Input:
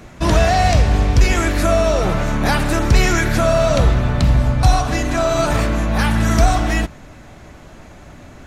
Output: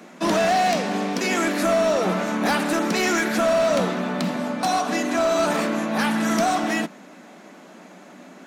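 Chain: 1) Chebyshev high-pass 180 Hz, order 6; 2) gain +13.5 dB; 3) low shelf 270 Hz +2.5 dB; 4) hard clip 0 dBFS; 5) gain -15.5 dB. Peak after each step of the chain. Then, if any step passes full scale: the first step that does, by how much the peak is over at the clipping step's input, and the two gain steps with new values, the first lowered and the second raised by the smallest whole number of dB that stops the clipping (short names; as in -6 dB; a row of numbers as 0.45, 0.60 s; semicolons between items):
-5.0, +8.5, +9.0, 0.0, -15.5 dBFS; step 2, 9.0 dB; step 2 +4.5 dB, step 5 -6.5 dB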